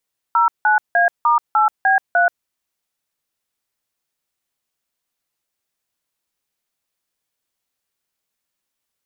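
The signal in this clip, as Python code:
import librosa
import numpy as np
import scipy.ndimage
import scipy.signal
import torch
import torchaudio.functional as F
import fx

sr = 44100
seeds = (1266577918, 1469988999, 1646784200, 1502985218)

y = fx.dtmf(sr, digits='09A*8B3', tone_ms=131, gap_ms=169, level_db=-14.0)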